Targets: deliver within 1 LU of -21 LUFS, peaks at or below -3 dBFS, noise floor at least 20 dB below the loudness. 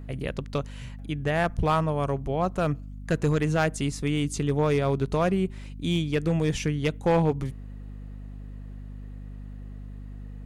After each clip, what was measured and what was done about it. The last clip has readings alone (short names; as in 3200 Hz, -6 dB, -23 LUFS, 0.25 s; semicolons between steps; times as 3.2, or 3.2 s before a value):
clipped 0.7%; flat tops at -15.5 dBFS; hum 50 Hz; harmonics up to 250 Hz; hum level -37 dBFS; loudness -26.5 LUFS; peak -15.5 dBFS; loudness target -21.0 LUFS
-> clip repair -15.5 dBFS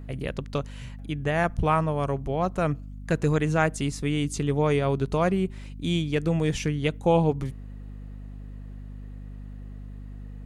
clipped 0.0%; hum 50 Hz; harmonics up to 250 Hz; hum level -37 dBFS
-> de-hum 50 Hz, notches 5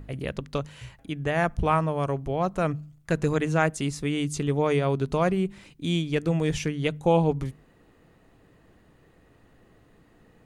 hum none; loudness -26.5 LUFS; peak -9.5 dBFS; loudness target -21.0 LUFS
-> gain +5.5 dB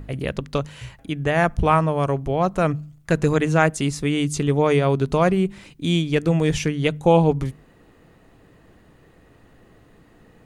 loudness -21.0 LUFS; peak -4.0 dBFS; noise floor -54 dBFS